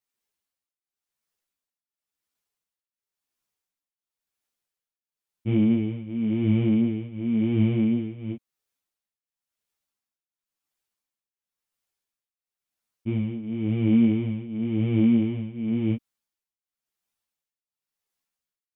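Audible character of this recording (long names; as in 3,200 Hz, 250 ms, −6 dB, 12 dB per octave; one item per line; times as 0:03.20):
tremolo triangle 0.95 Hz, depth 90%
a shimmering, thickened sound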